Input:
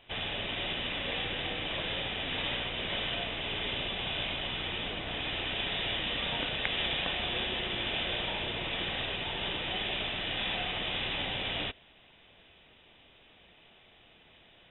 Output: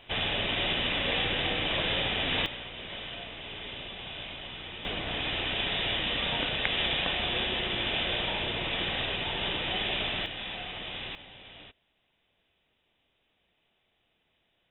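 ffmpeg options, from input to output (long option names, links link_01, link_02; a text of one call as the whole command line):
ffmpeg -i in.wav -af "asetnsamples=nb_out_samples=441:pad=0,asendcmd='2.46 volume volume -6dB;4.85 volume volume 3dB;10.26 volume volume -4.5dB;11.15 volume volume -15dB',volume=5.5dB" out.wav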